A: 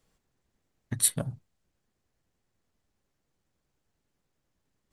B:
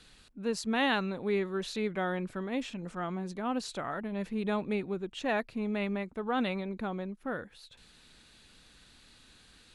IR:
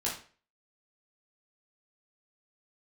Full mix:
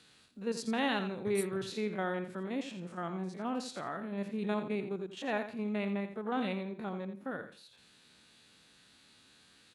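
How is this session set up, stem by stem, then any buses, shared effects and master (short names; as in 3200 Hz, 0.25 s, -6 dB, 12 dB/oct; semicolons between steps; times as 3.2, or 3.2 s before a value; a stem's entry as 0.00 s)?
-4.0 dB, 0.35 s, no send, no echo send, compressor 2:1, threshold -36 dBFS, peak gain reduction 10 dB; auto duck -10 dB, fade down 1.95 s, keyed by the second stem
-2.0 dB, 0.00 s, no send, echo send -10.5 dB, stepped spectrum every 50 ms; HPF 120 Hz 12 dB/oct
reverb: off
echo: feedback echo 85 ms, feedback 22%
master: dry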